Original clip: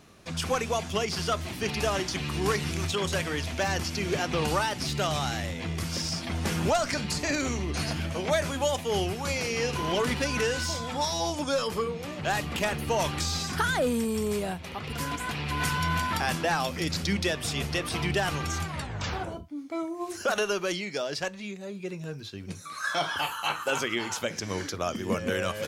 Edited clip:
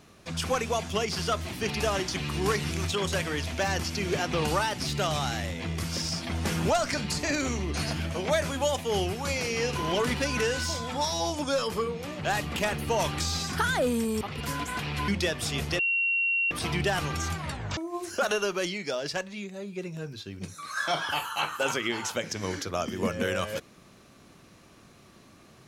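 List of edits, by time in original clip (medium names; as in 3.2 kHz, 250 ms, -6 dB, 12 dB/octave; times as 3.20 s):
14.21–14.73 s: delete
15.60–17.10 s: delete
17.81 s: add tone 2.74 kHz -23 dBFS 0.72 s
19.07–19.84 s: delete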